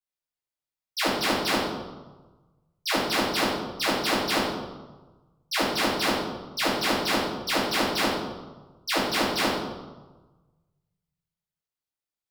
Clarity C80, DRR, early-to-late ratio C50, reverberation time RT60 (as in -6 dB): 3.5 dB, -11.5 dB, 1.0 dB, 1.3 s